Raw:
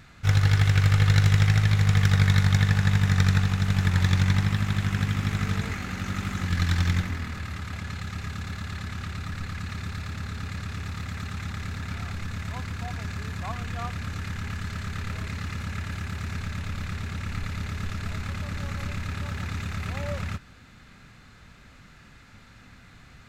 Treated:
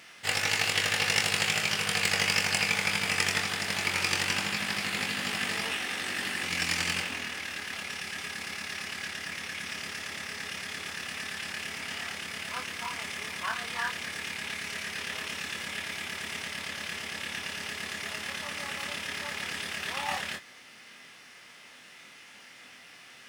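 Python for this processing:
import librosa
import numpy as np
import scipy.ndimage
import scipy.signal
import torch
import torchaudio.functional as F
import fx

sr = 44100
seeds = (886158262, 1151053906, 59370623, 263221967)

p1 = scipy.signal.sosfilt(scipy.signal.butter(2, 440.0, 'highpass', fs=sr, output='sos'), x)
p2 = fx.formant_shift(p1, sr, semitones=5)
p3 = fx.quant_float(p2, sr, bits=2)
p4 = p2 + F.gain(torch.from_numpy(p3), -7.0).numpy()
y = fx.doubler(p4, sr, ms=24.0, db=-5.5)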